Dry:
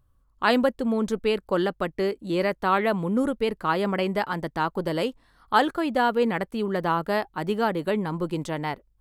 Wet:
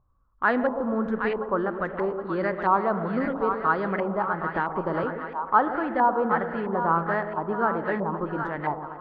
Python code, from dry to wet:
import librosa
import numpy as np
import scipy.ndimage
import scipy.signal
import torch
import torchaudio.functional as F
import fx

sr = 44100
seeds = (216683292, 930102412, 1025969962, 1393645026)

p1 = fx.echo_split(x, sr, split_hz=750.0, low_ms=125, high_ms=769, feedback_pct=52, wet_db=-7.0)
p2 = fx.dynamic_eq(p1, sr, hz=2600.0, q=1.6, threshold_db=-43.0, ratio=4.0, max_db=-6)
p3 = 10.0 ** (-16.0 / 20.0) * np.tanh(p2 / 10.0 ** (-16.0 / 20.0))
p4 = p2 + (p3 * librosa.db_to_amplitude(-11.0))
p5 = fx.peak_eq(p4, sr, hz=4600.0, db=9.0, octaves=0.82, at=(2.2, 3.88))
p6 = fx.rev_spring(p5, sr, rt60_s=3.5, pass_ms=(36,), chirp_ms=45, drr_db=12.5)
p7 = fx.filter_lfo_lowpass(p6, sr, shape='saw_up', hz=1.5, low_hz=970.0, high_hz=2000.0, q=2.8)
p8 = fx.band_squash(p7, sr, depth_pct=100, at=(4.54, 5.04))
y = p8 * librosa.db_to_amplitude(-6.0)